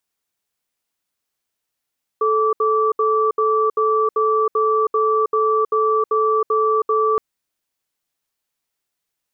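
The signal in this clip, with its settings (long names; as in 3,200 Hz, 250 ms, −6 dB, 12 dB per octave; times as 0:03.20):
tone pair in a cadence 436 Hz, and 1,160 Hz, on 0.32 s, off 0.07 s, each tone −17 dBFS 4.97 s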